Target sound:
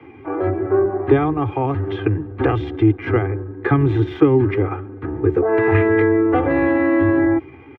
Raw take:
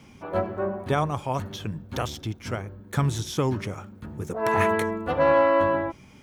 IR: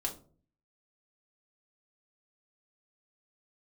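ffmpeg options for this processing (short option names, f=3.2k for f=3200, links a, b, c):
-filter_complex "[0:a]acrossover=split=260|3000[a][b][c];[b]acompressor=threshold=-32dB:ratio=10[d];[a][d][c]amix=inputs=3:normalize=0,highpass=f=84:w=0.5412,highpass=f=84:w=1.3066,tiltshelf=f=1.4k:g=8,acrossover=split=120|500|3200[e][f][g][h];[h]aeval=exprs='(mod(70.8*val(0)+1,2)-1)/70.8':c=same[i];[e][f][g][i]amix=inputs=4:normalize=0,firequalizer=gain_entry='entry(110,0);entry(180,-10);entry(300,9);entry(500,2);entry(2000,11);entry(5800,-24);entry(10000,-30)':delay=0.05:min_phase=1,atempo=0.8,dynaudnorm=f=140:g=9:m=5dB,aecho=1:1:2.5:0.67"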